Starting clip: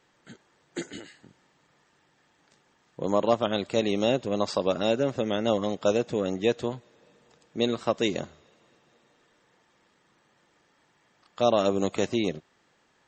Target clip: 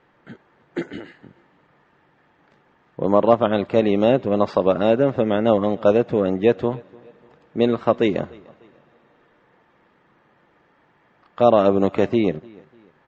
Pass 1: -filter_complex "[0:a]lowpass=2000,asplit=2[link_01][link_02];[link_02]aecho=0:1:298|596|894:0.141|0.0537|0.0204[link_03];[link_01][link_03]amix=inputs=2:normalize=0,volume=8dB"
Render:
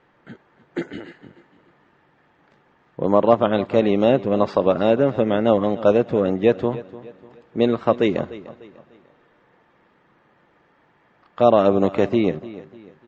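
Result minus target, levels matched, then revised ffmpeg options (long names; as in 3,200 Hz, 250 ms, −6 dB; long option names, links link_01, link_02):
echo-to-direct +8 dB
-filter_complex "[0:a]lowpass=2000,asplit=2[link_01][link_02];[link_02]aecho=0:1:298|596:0.0562|0.0214[link_03];[link_01][link_03]amix=inputs=2:normalize=0,volume=8dB"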